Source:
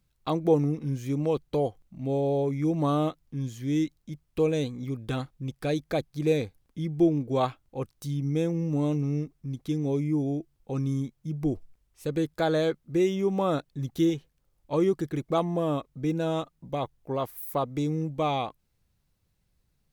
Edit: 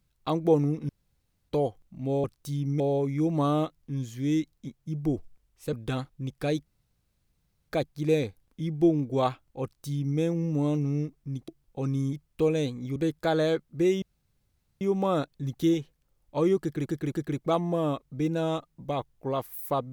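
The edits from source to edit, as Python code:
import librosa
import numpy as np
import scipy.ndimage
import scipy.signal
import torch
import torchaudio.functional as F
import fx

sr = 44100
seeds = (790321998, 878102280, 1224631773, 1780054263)

y = fx.edit(x, sr, fx.room_tone_fill(start_s=0.89, length_s=0.6),
    fx.swap(start_s=4.11, length_s=0.83, other_s=11.05, other_length_s=1.06),
    fx.insert_room_tone(at_s=5.87, length_s=1.03),
    fx.duplicate(start_s=7.81, length_s=0.56, to_s=2.24),
    fx.cut(start_s=9.66, length_s=0.74),
    fx.insert_room_tone(at_s=13.17, length_s=0.79),
    fx.repeat(start_s=14.96, length_s=0.26, count=3), tone=tone)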